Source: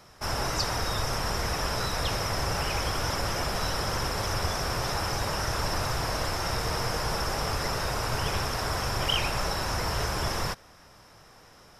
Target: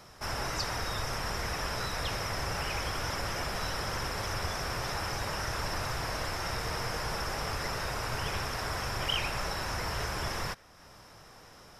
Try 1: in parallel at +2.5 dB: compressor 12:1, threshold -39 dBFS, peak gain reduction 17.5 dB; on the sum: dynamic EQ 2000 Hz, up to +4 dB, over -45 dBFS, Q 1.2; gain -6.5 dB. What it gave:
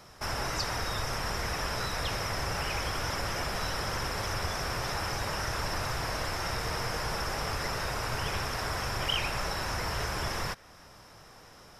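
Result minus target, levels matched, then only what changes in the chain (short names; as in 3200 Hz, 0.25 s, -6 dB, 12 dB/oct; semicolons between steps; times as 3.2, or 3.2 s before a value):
compressor: peak gain reduction -8.5 dB
change: compressor 12:1, threshold -48.5 dBFS, peak gain reduction 26.5 dB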